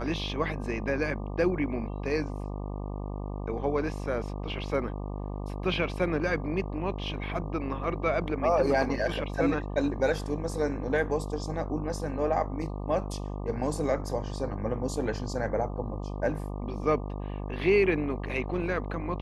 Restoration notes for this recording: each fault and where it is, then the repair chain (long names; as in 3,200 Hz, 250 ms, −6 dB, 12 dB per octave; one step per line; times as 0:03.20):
mains buzz 50 Hz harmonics 24 −35 dBFS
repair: hum removal 50 Hz, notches 24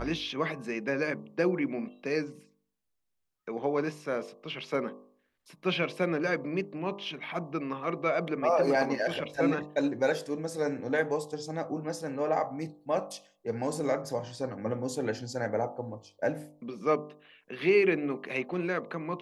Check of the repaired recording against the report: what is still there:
none of them is left